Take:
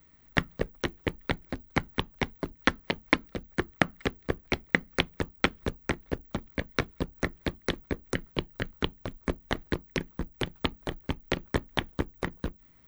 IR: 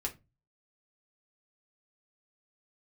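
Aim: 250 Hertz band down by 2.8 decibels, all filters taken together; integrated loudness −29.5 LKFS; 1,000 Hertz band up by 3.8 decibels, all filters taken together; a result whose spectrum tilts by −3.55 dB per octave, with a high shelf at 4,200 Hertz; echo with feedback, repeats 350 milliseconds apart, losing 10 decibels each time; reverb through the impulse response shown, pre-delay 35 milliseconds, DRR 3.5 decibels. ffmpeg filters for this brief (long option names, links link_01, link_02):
-filter_complex "[0:a]equalizer=frequency=250:width_type=o:gain=-4,equalizer=frequency=1000:width_type=o:gain=5.5,highshelf=frequency=4200:gain=-6,aecho=1:1:350|700|1050|1400:0.316|0.101|0.0324|0.0104,asplit=2[link_01][link_02];[1:a]atrim=start_sample=2205,adelay=35[link_03];[link_02][link_03]afir=irnorm=-1:irlink=0,volume=-5dB[link_04];[link_01][link_04]amix=inputs=2:normalize=0,volume=1dB"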